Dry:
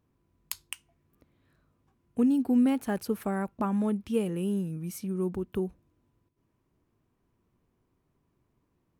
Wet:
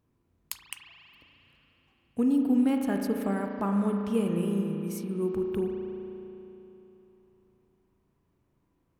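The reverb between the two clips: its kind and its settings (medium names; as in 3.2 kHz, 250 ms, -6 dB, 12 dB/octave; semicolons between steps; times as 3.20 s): spring tank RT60 3.3 s, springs 35 ms, chirp 35 ms, DRR 2.5 dB; trim -1 dB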